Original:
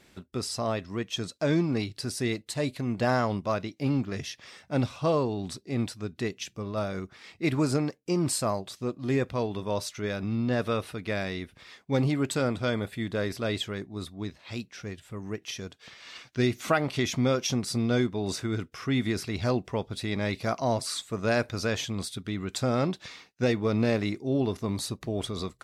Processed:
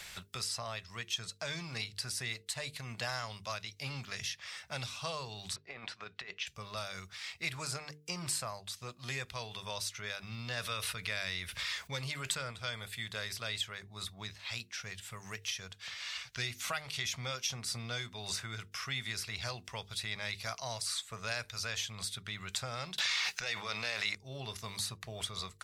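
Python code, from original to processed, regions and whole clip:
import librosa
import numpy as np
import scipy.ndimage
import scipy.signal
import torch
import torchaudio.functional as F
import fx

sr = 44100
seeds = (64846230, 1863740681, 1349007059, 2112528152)

y = fx.chain(x, sr, fx.bandpass_edges(low_hz=350.0, high_hz=2400.0),
    fx.over_compress(threshold_db=-37.0, ratio=-0.5), at=(5.56, 6.47))
y = fx.chain(y, sr, fx.notch(hz=770.0, q=7.5),
    fx.env_flatten(amount_pct=50), at=(10.57, 12.51))
y = fx.chain(y, sr, fx.weighting(curve='A'),
    fx.env_flatten(amount_pct=100), at=(22.98, 24.15))
y = fx.tone_stack(y, sr, knobs='10-0-10')
y = fx.hum_notches(y, sr, base_hz=50, count=9)
y = fx.band_squash(y, sr, depth_pct=70)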